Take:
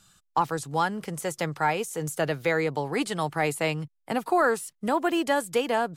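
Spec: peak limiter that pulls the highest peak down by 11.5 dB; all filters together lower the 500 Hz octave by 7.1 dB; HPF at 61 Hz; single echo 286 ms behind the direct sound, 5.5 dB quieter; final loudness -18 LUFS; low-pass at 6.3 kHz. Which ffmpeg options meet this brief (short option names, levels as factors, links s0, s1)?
-af "highpass=61,lowpass=6300,equalizer=f=500:t=o:g=-9,alimiter=level_in=1.26:limit=0.0631:level=0:latency=1,volume=0.794,aecho=1:1:286:0.531,volume=7.5"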